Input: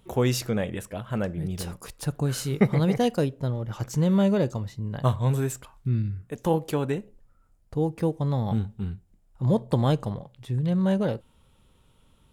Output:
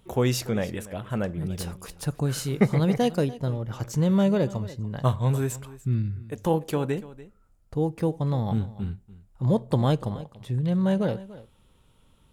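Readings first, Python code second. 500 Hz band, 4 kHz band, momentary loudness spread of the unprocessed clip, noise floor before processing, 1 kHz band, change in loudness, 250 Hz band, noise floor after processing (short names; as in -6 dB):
0.0 dB, 0.0 dB, 11 LU, -62 dBFS, 0.0 dB, 0.0 dB, 0.0 dB, -60 dBFS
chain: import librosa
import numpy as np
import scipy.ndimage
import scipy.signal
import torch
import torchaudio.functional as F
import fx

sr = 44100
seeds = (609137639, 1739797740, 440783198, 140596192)

y = x + 10.0 ** (-18.0 / 20.0) * np.pad(x, (int(290 * sr / 1000.0), 0))[:len(x)]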